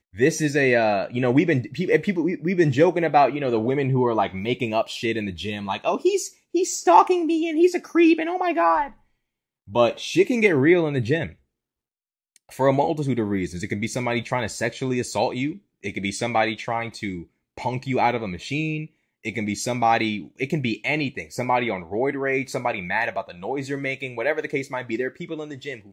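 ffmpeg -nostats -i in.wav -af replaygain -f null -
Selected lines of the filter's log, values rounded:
track_gain = +2.0 dB
track_peak = 0.602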